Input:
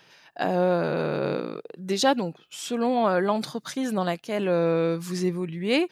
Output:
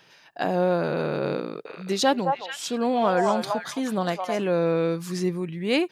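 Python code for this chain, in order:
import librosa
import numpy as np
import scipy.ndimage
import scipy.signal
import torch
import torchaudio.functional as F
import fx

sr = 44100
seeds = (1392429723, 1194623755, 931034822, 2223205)

y = fx.echo_stepped(x, sr, ms=216, hz=850.0, octaves=1.4, feedback_pct=70, wet_db=-0.5, at=(1.65, 4.41), fade=0.02)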